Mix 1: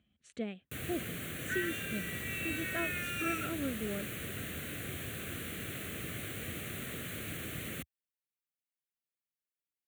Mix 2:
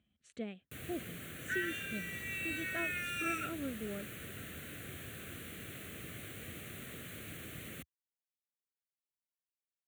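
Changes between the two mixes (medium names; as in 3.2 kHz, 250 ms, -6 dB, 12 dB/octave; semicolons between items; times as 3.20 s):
speech -3.5 dB; first sound -6.0 dB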